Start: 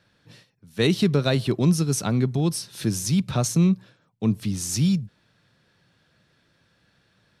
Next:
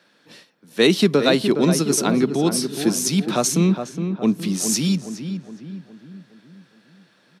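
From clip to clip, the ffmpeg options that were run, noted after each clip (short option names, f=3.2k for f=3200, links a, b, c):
-filter_complex "[0:a]highpass=f=210:w=0.5412,highpass=f=210:w=1.3066,asplit=2[a][b];[b]adelay=415,lowpass=f=1.7k:p=1,volume=-7.5dB,asplit=2[c][d];[d]adelay=415,lowpass=f=1.7k:p=1,volume=0.5,asplit=2[e][f];[f]adelay=415,lowpass=f=1.7k:p=1,volume=0.5,asplit=2[g][h];[h]adelay=415,lowpass=f=1.7k:p=1,volume=0.5,asplit=2[i][j];[j]adelay=415,lowpass=f=1.7k:p=1,volume=0.5,asplit=2[k][l];[l]adelay=415,lowpass=f=1.7k:p=1,volume=0.5[m];[c][e][g][i][k][m]amix=inputs=6:normalize=0[n];[a][n]amix=inputs=2:normalize=0,volume=6.5dB"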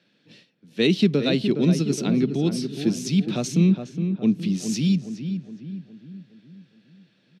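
-af "firequalizer=gain_entry='entry(130,0);entry(320,-6);entry(1000,-18);entry(2600,-5);entry(10000,-21)':delay=0.05:min_phase=1,volume=2dB"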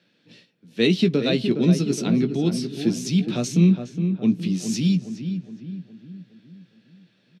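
-filter_complex "[0:a]asplit=2[a][b];[b]adelay=17,volume=-9dB[c];[a][c]amix=inputs=2:normalize=0"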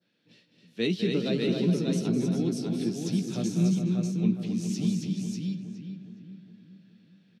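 -filter_complex "[0:a]adynamicequalizer=threshold=0.00631:dfrequency=2500:dqfactor=0.82:tfrequency=2500:tqfactor=0.82:attack=5:release=100:ratio=0.375:range=3:mode=cutabove:tftype=bell,asplit=2[a][b];[b]aecho=0:1:205|270|593:0.355|0.562|0.631[c];[a][c]amix=inputs=2:normalize=0,volume=-8.5dB"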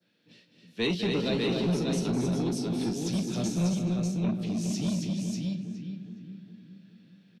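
-filter_complex "[0:a]asplit=2[a][b];[b]adelay=40,volume=-11dB[c];[a][c]amix=inputs=2:normalize=0,acrossover=split=120|510|1400[d][e][f][g];[e]asoftclip=type=tanh:threshold=-29.5dB[h];[d][h][f][g]amix=inputs=4:normalize=0,volume=2dB"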